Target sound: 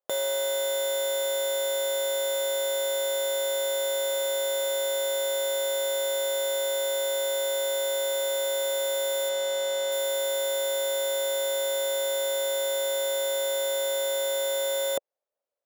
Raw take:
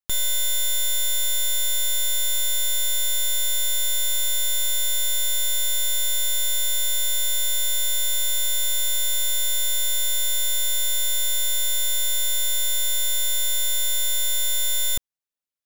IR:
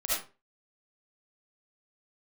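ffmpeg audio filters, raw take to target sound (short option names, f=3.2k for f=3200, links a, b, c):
-filter_complex "[0:a]asettb=1/sr,asplit=3[a][b][c];[a]atrim=end=9.294[d];[b]atrim=start=9.29:end=9.92,asetpts=PTS-STARTPTS,afade=t=in:d=0.004:c=qsin,afade=t=out:st=0.626:d=0.004:c=qsin,acrossover=split=8200[e][f];[f]acompressor=threshold=-31dB:ratio=4:attack=1:release=60[g];[e][g]amix=inputs=2:normalize=0[h];[c]atrim=start=9.916[i];[d][h]acrossfade=d=0.004:c1=hsin:c2=qsin[j];[j][i]acrossfade=d=0.004:c1=qsin:c2=hsin,highpass=f=560:t=q:w=4.9,tiltshelf=f=1.4k:g=10"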